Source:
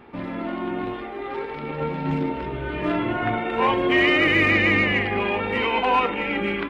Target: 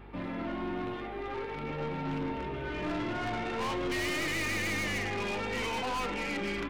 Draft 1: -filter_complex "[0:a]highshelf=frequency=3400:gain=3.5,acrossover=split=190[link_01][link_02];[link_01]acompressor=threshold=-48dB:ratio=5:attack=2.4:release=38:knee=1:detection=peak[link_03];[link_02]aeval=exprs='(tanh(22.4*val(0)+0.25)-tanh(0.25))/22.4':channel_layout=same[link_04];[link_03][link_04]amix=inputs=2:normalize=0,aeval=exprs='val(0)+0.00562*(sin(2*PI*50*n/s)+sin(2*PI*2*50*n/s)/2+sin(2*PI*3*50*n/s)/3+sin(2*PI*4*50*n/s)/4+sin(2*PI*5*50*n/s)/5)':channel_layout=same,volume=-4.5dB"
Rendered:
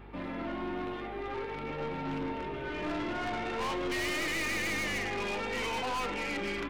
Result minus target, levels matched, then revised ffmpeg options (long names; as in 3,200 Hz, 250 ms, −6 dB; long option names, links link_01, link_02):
downward compressor: peak gain reduction +8.5 dB
-filter_complex "[0:a]highshelf=frequency=3400:gain=3.5,acrossover=split=190[link_01][link_02];[link_01]acompressor=threshold=-37.5dB:ratio=5:attack=2.4:release=38:knee=1:detection=peak[link_03];[link_02]aeval=exprs='(tanh(22.4*val(0)+0.25)-tanh(0.25))/22.4':channel_layout=same[link_04];[link_03][link_04]amix=inputs=2:normalize=0,aeval=exprs='val(0)+0.00562*(sin(2*PI*50*n/s)+sin(2*PI*2*50*n/s)/2+sin(2*PI*3*50*n/s)/3+sin(2*PI*4*50*n/s)/4+sin(2*PI*5*50*n/s)/5)':channel_layout=same,volume=-4.5dB"